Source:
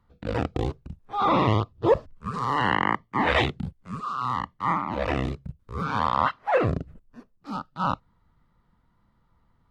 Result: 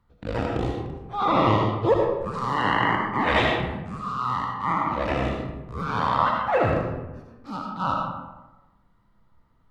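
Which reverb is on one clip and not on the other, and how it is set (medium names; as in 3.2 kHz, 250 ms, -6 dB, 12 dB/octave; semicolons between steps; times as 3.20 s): algorithmic reverb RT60 1.1 s, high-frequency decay 0.55×, pre-delay 35 ms, DRR 0 dB; trim -1 dB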